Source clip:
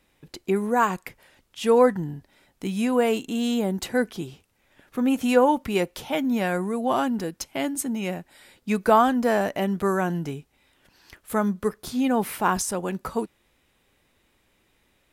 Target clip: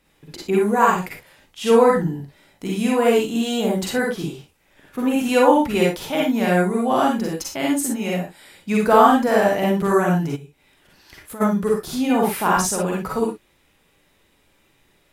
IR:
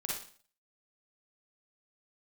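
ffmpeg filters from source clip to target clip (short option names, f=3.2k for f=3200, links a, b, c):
-filter_complex "[1:a]atrim=start_sample=2205,afade=t=out:st=0.17:d=0.01,atrim=end_sample=7938[a];[0:a][a]afir=irnorm=-1:irlink=0,asplit=3[b][c][d];[b]afade=t=out:st=10.35:d=0.02[e];[c]acompressor=threshold=-38dB:ratio=8,afade=t=in:st=10.35:d=0.02,afade=t=out:st=11.4:d=0.02[f];[d]afade=t=in:st=11.4:d=0.02[g];[e][f][g]amix=inputs=3:normalize=0,volume=3.5dB"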